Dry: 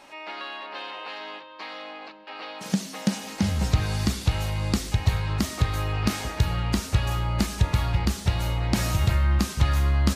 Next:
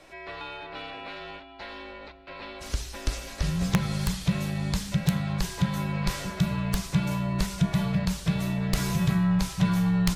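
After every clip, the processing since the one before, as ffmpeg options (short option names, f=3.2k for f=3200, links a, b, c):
-af "afreqshift=-250,bandreject=f=59.29:t=h:w=4,bandreject=f=118.58:t=h:w=4,aeval=exprs='(mod(3.16*val(0)+1,2)-1)/3.16':c=same,volume=-2.5dB"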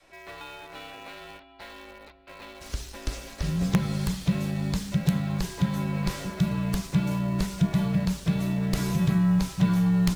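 -filter_complex "[0:a]adynamicequalizer=threshold=0.0141:dfrequency=280:dqfactor=0.72:tfrequency=280:tqfactor=0.72:attack=5:release=100:ratio=0.375:range=3.5:mode=boostabove:tftype=bell,asplit=2[a][b];[b]acrusher=bits=5:mix=0:aa=0.000001,volume=-10dB[c];[a][c]amix=inputs=2:normalize=0,volume=-5.5dB"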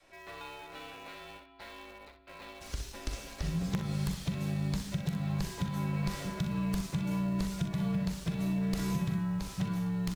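-filter_complex "[0:a]acompressor=threshold=-25dB:ratio=6,asplit=2[a][b];[b]aecho=0:1:42|62:0.282|0.355[c];[a][c]amix=inputs=2:normalize=0,volume=-4.5dB"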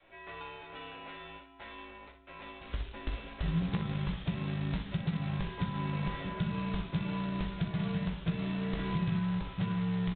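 -filter_complex "[0:a]aresample=8000,acrusher=bits=4:mode=log:mix=0:aa=0.000001,aresample=44100,asplit=2[a][b];[b]adelay=18,volume=-8dB[c];[a][c]amix=inputs=2:normalize=0"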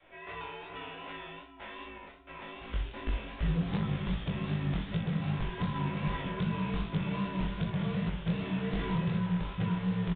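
-af "aresample=8000,volume=28.5dB,asoftclip=hard,volume=-28.5dB,aresample=44100,flanger=delay=18:depth=6.7:speed=2.6,volume=5.5dB"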